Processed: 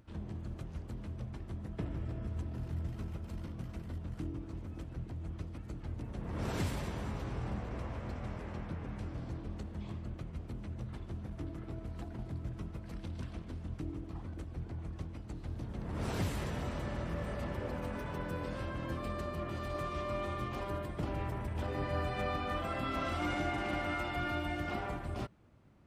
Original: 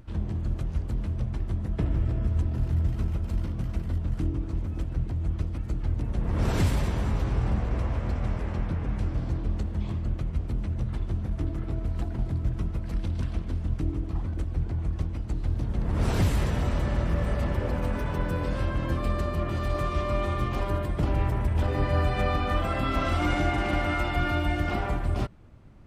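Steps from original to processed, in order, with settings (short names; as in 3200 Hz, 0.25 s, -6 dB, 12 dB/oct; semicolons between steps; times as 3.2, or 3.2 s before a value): HPF 130 Hz 6 dB/oct; gain -7.5 dB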